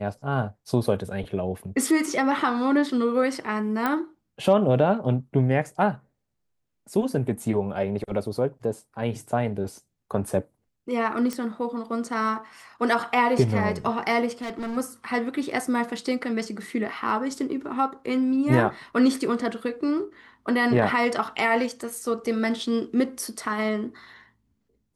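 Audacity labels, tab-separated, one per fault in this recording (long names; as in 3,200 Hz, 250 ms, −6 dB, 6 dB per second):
3.860000	3.860000	click −12 dBFS
11.330000	11.330000	click −15 dBFS
14.410000	14.780000	clipping −28.5 dBFS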